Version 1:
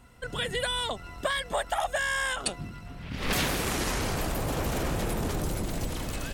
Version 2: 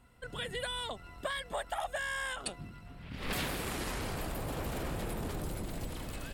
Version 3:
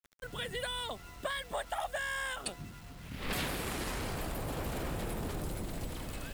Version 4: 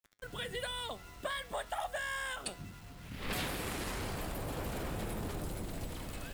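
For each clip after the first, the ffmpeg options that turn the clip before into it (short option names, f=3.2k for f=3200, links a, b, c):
-af "equalizer=f=6.1k:t=o:w=0.42:g=-6,volume=-7.5dB"
-af "acrusher=bits=8:mix=0:aa=0.000001"
-af "flanger=delay=9.5:depth=1.1:regen=83:speed=0.6:shape=sinusoidal,volume=3dB"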